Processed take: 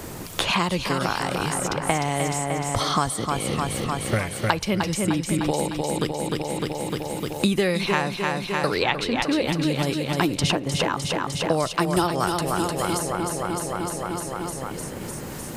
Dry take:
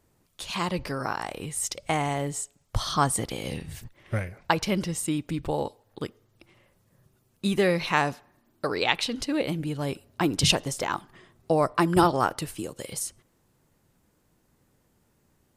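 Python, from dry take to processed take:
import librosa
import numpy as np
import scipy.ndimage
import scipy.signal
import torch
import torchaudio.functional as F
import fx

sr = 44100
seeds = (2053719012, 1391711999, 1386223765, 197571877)

y = fx.echo_feedback(x, sr, ms=303, feedback_pct=58, wet_db=-6.5)
y = fx.band_squash(y, sr, depth_pct=100)
y = y * librosa.db_to_amplitude(2.5)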